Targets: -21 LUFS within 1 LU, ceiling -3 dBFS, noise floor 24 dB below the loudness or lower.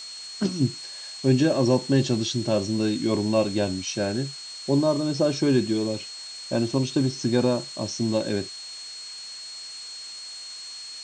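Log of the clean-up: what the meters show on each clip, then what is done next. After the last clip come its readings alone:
steady tone 4300 Hz; tone level -37 dBFS; noise floor -39 dBFS; noise floor target -50 dBFS; loudness -25.5 LUFS; peak -8.5 dBFS; loudness target -21.0 LUFS
-> notch 4300 Hz, Q 30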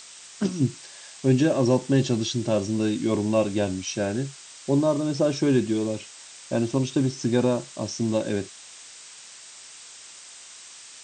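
steady tone none; noise floor -45 dBFS; noise floor target -49 dBFS
-> noise print and reduce 6 dB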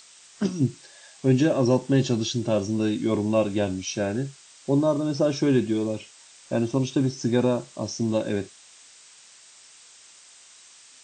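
noise floor -51 dBFS; loudness -25.0 LUFS; peak -8.5 dBFS; loudness target -21.0 LUFS
-> gain +4 dB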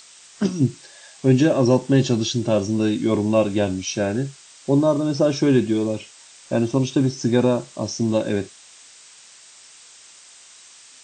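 loudness -21.0 LUFS; peak -4.5 dBFS; noise floor -47 dBFS

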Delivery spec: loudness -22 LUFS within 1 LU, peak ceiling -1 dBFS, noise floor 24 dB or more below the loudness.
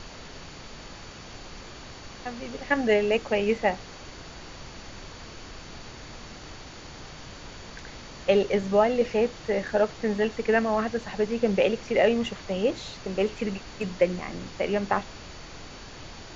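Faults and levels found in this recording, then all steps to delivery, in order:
steady tone 4500 Hz; tone level -54 dBFS; noise floor -44 dBFS; noise floor target -50 dBFS; loudness -26.0 LUFS; peak -7.5 dBFS; loudness target -22.0 LUFS
-> notch 4500 Hz, Q 30; noise print and reduce 6 dB; gain +4 dB

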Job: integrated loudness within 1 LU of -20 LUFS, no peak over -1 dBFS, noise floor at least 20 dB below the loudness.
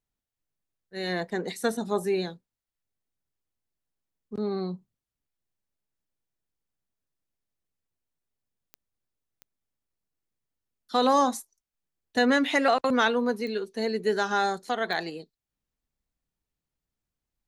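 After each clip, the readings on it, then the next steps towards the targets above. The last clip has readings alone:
clicks 4; loudness -27.0 LUFS; peak -10.0 dBFS; loudness target -20.0 LUFS
-> de-click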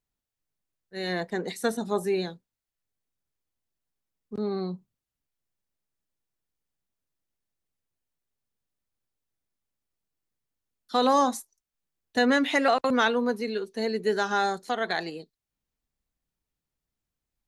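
clicks 0; loudness -27.0 LUFS; peak -10.0 dBFS; loudness target -20.0 LUFS
-> gain +7 dB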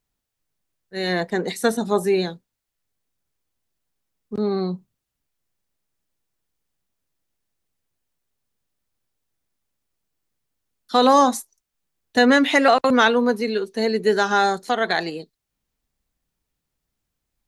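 loudness -20.0 LUFS; peak -3.0 dBFS; noise floor -81 dBFS

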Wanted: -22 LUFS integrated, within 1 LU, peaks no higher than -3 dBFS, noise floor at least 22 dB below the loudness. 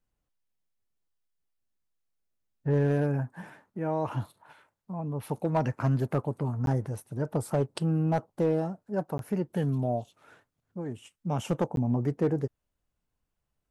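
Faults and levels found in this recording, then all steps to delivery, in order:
clipped 0.4%; flat tops at -19.0 dBFS; dropouts 3; longest dropout 12 ms; loudness -30.5 LUFS; peak -19.0 dBFS; loudness target -22.0 LUFS
-> clip repair -19 dBFS; interpolate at 6.66/9.18/11.76, 12 ms; gain +8.5 dB

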